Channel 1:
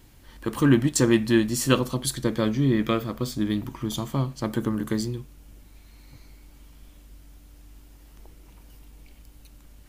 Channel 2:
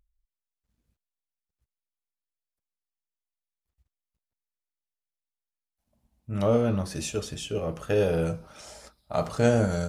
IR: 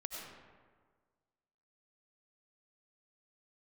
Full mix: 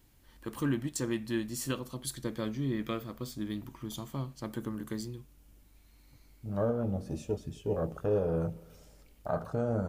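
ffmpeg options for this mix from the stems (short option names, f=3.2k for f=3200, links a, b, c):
-filter_complex "[0:a]highshelf=f=10k:g=5,volume=-11dB,asplit=2[a][b];[1:a]afwtdn=0.0251,adelay=150,volume=-1dB,asplit=2[c][d];[d]volume=-22dB[e];[b]apad=whole_len=442735[f];[c][f]sidechaincompress=threshold=-52dB:ratio=8:attack=6.1:release=1470[g];[2:a]atrim=start_sample=2205[h];[e][h]afir=irnorm=-1:irlink=0[i];[a][g][i]amix=inputs=3:normalize=0,alimiter=limit=-20.5dB:level=0:latency=1:release=424"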